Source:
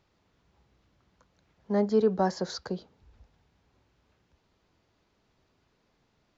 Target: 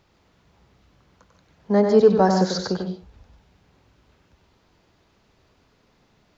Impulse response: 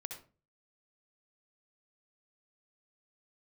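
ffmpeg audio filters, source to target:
-filter_complex "[0:a]asplit=2[a][b];[1:a]atrim=start_sample=2205,asetrate=61740,aresample=44100,adelay=95[c];[b][c]afir=irnorm=-1:irlink=0,volume=1.5dB[d];[a][d]amix=inputs=2:normalize=0,volume=8dB"

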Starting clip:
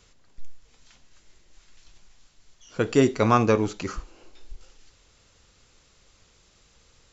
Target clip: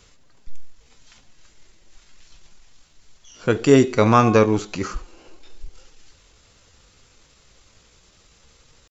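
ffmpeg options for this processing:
-af "bandreject=f=363.3:t=h:w=4,bandreject=f=726.6:t=h:w=4,bandreject=f=1.0899k:t=h:w=4,bandreject=f=1.4532k:t=h:w=4,bandreject=f=1.8165k:t=h:w=4,bandreject=f=2.1798k:t=h:w=4,bandreject=f=2.5431k:t=h:w=4,bandreject=f=2.9064k:t=h:w=4,bandreject=f=3.2697k:t=h:w=4,bandreject=f=3.633k:t=h:w=4,bandreject=f=3.9963k:t=h:w=4,atempo=0.8,volume=5dB"

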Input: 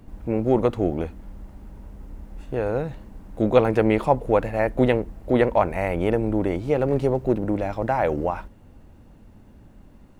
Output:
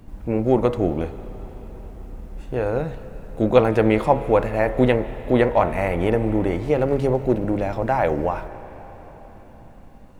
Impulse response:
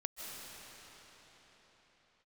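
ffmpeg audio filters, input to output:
-filter_complex "[0:a]bandreject=f=69:t=h:w=4,bandreject=f=138:t=h:w=4,bandreject=f=207:t=h:w=4,bandreject=f=276:t=h:w=4,bandreject=f=345:t=h:w=4,bandreject=f=414:t=h:w=4,bandreject=f=483:t=h:w=4,bandreject=f=552:t=h:w=4,bandreject=f=621:t=h:w=4,bandreject=f=690:t=h:w=4,bandreject=f=759:t=h:w=4,bandreject=f=828:t=h:w=4,bandreject=f=897:t=h:w=4,bandreject=f=966:t=h:w=4,bandreject=f=1.035k:t=h:w=4,bandreject=f=1.104k:t=h:w=4,bandreject=f=1.173k:t=h:w=4,bandreject=f=1.242k:t=h:w=4,bandreject=f=1.311k:t=h:w=4,bandreject=f=1.38k:t=h:w=4,bandreject=f=1.449k:t=h:w=4,bandreject=f=1.518k:t=h:w=4,bandreject=f=1.587k:t=h:w=4,bandreject=f=1.656k:t=h:w=4,bandreject=f=1.725k:t=h:w=4,bandreject=f=1.794k:t=h:w=4,bandreject=f=1.863k:t=h:w=4,bandreject=f=1.932k:t=h:w=4,bandreject=f=2.001k:t=h:w=4,bandreject=f=2.07k:t=h:w=4,bandreject=f=2.139k:t=h:w=4,bandreject=f=2.208k:t=h:w=4,asplit=2[a][b];[b]equalizer=f=300:w=1.2:g=-6.5[c];[1:a]atrim=start_sample=2205[d];[c][d]afir=irnorm=-1:irlink=0,volume=-10.5dB[e];[a][e]amix=inputs=2:normalize=0,volume=1dB"

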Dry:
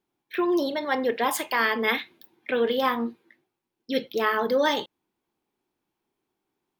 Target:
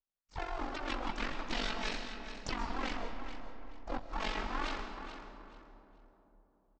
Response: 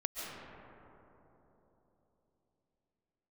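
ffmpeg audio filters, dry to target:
-filter_complex "[0:a]acrossover=split=3200[a][b];[b]acompressor=threshold=-39dB:ratio=4:attack=1:release=60[c];[a][c]amix=inputs=2:normalize=0,afwtdn=0.0251,aecho=1:1:7.1:0.34,acompressor=threshold=-32dB:ratio=2.5,aresample=11025,aeval=exprs='abs(val(0))':c=same,aresample=44100,aeval=exprs='val(0)*sin(2*PI*23*n/s)':c=same,asplit=3[d][e][f];[e]asetrate=55563,aresample=44100,atempo=0.793701,volume=-5dB[g];[f]asetrate=66075,aresample=44100,atempo=0.66742,volume=-9dB[h];[d][g][h]amix=inputs=3:normalize=0,aecho=1:1:430|860|1290:0.282|0.0648|0.0149,asplit=2[i][j];[1:a]atrim=start_sample=2205,highshelf=f=3.8k:g=11.5[k];[j][k]afir=irnorm=-1:irlink=0,volume=-8.5dB[l];[i][l]amix=inputs=2:normalize=0,volume=-3.5dB"

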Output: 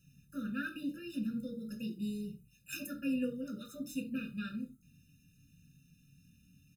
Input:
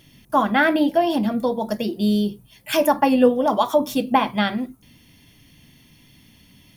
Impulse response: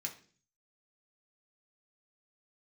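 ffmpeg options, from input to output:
-filter_complex "[0:a]firequalizer=gain_entry='entry(120,0);entry(370,-13);entry(1900,-11);entry(3300,-3)':delay=0.05:min_phase=1[a];[1:a]atrim=start_sample=2205,afade=t=out:st=0.14:d=0.01,atrim=end_sample=6615[b];[a][b]afir=irnorm=-1:irlink=0,afftfilt=real='re*eq(mod(floor(b*sr/1024/600),2),0)':imag='im*eq(mod(floor(b*sr/1024/600),2),0)':win_size=1024:overlap=0.75,volume=-7.5dB"

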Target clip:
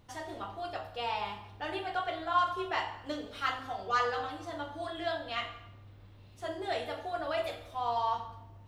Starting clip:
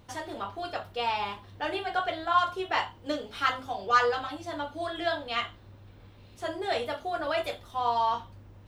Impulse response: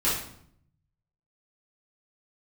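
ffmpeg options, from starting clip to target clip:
-filter_complex "[0:a]asplit=2[a][b];[1:a]atrim=start_sample=2205,asetrate=29547,aresample=44100[c];[b][c]afir=irnorm=-1:irlink=0,volume=-20dB[d];[a][d]amix=inputs=2:normalize=0,volume=-6.5dB"

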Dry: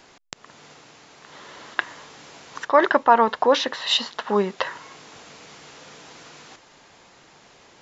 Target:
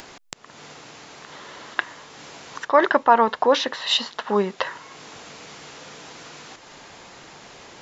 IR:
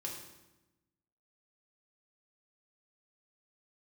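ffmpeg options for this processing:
-af "acompressor=mode=upward:threshold=-35dB:ratio=2.5"

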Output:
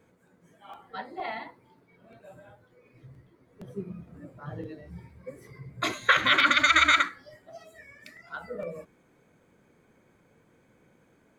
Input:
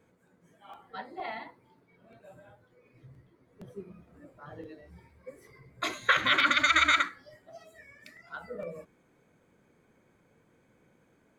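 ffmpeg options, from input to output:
-filter_complex "[0:a]asettb=1/sr,asplit=3[a][b][c];[a]atrim=end=3.694[d];[b]atrim=start=3.69:end=5.92,asetpts=PTS-STARTPTS,afade=t=in:d=0.004:c=qsin,afade=t=out:st=2.226:d=0.004:c=qsin,equalizer=f=140:t=o:w=1.5:g=10[e];[c]atrim=start=5.916[f];[d][e]acrossfade=d=0.004:c1=hsin:c2=qsin[g];[g][f]acrossfade=d=0.004:c1=qsin:c2=hsin,volume=3dB"

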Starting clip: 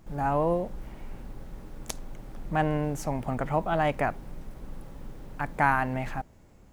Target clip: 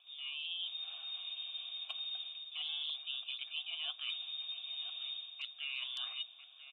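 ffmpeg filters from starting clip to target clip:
-filter_complex "[0:a]acrossover=split=1400[a][b];[a]dynaudnorm=f=560:g=5:m=5dB[c];[b]asoftclip=type=tanh:threshold=-26dB[d];[c][d]amix=inputs=2:normalize=0,lowpass=f=3.1k:t=q:w=0.5098,lowpass=f=3.1k:t=q:w=0.6013,lowpass=f=3.1k:t=q:w=0.9,lowpass=f=3.1k:t=q:w=2.563,afreqshift=-3700,asplit=3[e][f][g];[e]bandpass=f=730:t=q:w=8,volume=0dB[h];[f]bandpass=f=1.09k:t=q:w=8,volume=-6dB[i];[g]bandpass=f=2.44k:t=q:w=8,volume=-9dB[j];[h][i][j]amix=inputs=3:normalize=0,areverse,acompressor=threshold=-54dB:ratio=5,areverse,highpass=f=50:w=0.5412,highpass=f=50:w=1.3066,aemphasis=mode=production:type=75fm,asplit=2[k][l];[l]adelay=991.3,volume=-7dB,highshelf=f=4k:g=-22.3[m];[k][m]amix=inputs=2:normalize=0,volume=9dB" -ar 48000 -c:a aac -b:a 32k

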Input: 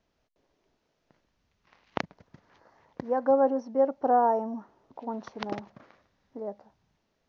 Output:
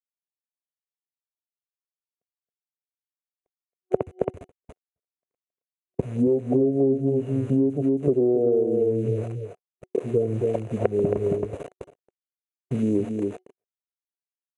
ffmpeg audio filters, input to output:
-af "tiltshelf=f=1.5k:g=9.5,aeval=exprs='val(0)*gte(abs(val(0)),0.00596)':c=same,highpass=f=370:p=1,aecho=1:1:136:0.447,dynaudnorm=f=450:g=5:m=10dB,superequalizer=9b=3.55:10b=3.16:14b=1.41:15b=0.562:16b=0.251,asetrate=22050,aresample=44100,agate=range=-43dB:threshold=-39dB:ratio=16:detection=peak,acompressor=threshold=-18dB:ratio=10"

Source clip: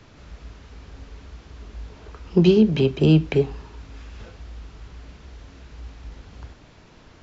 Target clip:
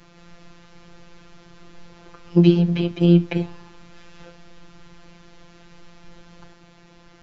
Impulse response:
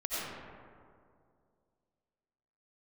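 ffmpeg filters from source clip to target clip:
-filter_complex "[0:a]acrossover=split=4600[a][b];[b]acompressor=threshold=-53dB:ratio=4:attack=1:release=60[c];[a][c]amix=inputs=2:normalize=0,afftfilt=real='hypot(re,im)*cos(PI*b)':imag='0':win_size=1024:overlap=0.75,volume=3dB"

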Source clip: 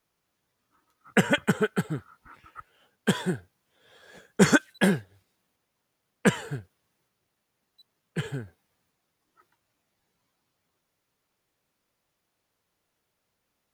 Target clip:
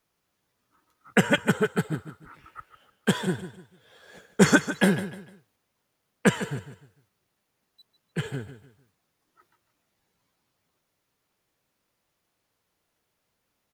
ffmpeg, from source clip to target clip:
-af "aecho=1:1:150|300|450:0.237|0.0759|0.0243,volume=1dB"

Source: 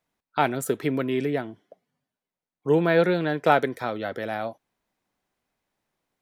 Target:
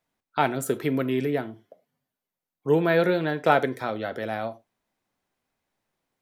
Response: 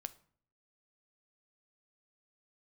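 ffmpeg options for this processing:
-filter_complex "[0:a]asettb=1/sr,asplit=3[a][b][c];[a]atrim=end=0.804[d];[b]atrim=start=0.8:end=3.31,asetpts=PTS-STARTPTS,afade=t=in:d=0.004:c=qsin,afade=t=out:st=2.506:d=0.004:c=qsin,equalizer=f=13k:t=o:w=0.29:g=10[e];[c]atrim=start=3.306[f];[d][e]acrossfade=d=0.004:c1=hsin:c2=qsin[g];[g][f]acrossfade=d=0.004:c1=qsin:c2=hsin[h];[1:a]atrim=start_sample=2205,afade=t=out:st=0.16:d=0.01,atrim=end_sample=7497[i];[h][i]afir=irnorm=-1:irlink=0,volume=3dB"

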